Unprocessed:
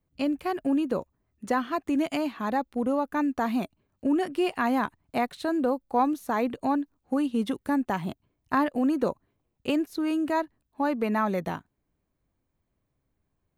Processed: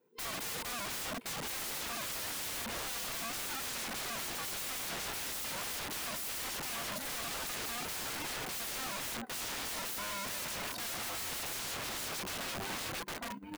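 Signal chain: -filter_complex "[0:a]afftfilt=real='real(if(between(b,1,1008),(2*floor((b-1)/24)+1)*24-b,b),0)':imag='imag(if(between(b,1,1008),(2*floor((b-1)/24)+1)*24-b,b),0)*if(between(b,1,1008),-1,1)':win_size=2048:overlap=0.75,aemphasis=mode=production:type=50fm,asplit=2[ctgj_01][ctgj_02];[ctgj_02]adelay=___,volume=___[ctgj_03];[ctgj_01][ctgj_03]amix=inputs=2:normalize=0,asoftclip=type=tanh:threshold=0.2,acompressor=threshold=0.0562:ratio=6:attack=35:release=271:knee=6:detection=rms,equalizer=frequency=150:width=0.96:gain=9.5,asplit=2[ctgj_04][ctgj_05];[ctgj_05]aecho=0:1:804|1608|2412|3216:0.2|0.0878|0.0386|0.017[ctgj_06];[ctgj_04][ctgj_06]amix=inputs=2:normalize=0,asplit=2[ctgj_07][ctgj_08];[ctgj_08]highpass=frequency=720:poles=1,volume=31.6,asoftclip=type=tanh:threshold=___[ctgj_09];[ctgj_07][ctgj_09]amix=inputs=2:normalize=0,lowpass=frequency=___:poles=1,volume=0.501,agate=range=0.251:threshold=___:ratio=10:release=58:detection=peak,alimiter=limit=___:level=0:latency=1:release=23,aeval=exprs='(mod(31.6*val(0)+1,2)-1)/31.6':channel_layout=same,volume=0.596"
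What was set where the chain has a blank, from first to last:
30, 0.501, 0.282, 1400, 0.0112, 0.178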